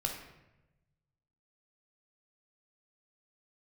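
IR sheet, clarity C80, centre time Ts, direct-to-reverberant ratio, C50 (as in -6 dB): 8.0 dB, 31 ms, 1.5 dB, 5.5 dB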